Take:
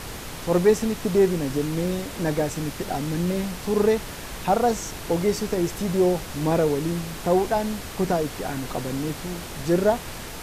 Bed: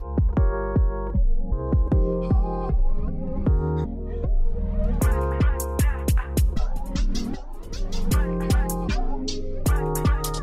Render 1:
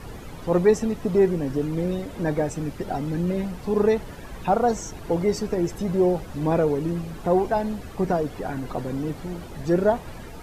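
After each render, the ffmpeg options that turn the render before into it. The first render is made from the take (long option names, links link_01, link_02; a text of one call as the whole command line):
ffmpeg -i in.wav -af "afftdn=noise_reduction=13:noise_floor=-36" out.wav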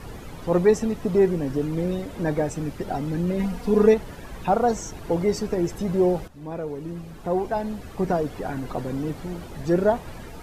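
ffmpeg -i in.wav -filter_complex "[0:a]asettb=1/sr,asplit=3[link_01][link_02][link_03];[link_01]atrim=end=3.394[link_04];[link_02]atrim=start=3.39:end=3.94,asetpts=PTS-STARTPTS,afade=type=in:duration=0.004:curve=qsin,afade=type=out:start_time=0.546:duration=0.004:curve=qsin,aecho=1:1:4.2:0.87,atrim=end_sample=24255[link_05];[link_03]atrim=start=3.936[link_06];[link_04][link_05]acrossfade=duration=0.004:curve1=hsin:curve2=qsin[link_07];[link_07][link_06]acrossfade=duration=0.004:curve1=qsin:curve2=hsin,asplit=2[link_08][link_09];[link_08]atrim=end=6.28,asetpts=PTS-STARTPTS,afade=type=out:start_time=6.276:duration=0.004:curve=hsin:silence=0.16788[link_10];[link_09]atrim=start=6.28,asetpts=PTS-STARTPTS,afade=type=in:duration=1.89:silence=0.16788[link_11];[link_10][link_11]concat=n=2:v=0:a=1" out.wav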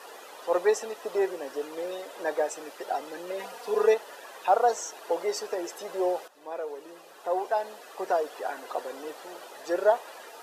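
ffmpeg -i in.wav -af "highpass=frequency=480:width=0.5412,highpass=frequency=480:width=1.3066,bandreject=frequency=2200:width=9.3" out.wav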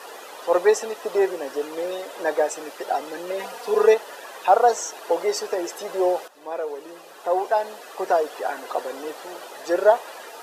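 ffmpeg -i in.wav -af "volume=6dB" out.wav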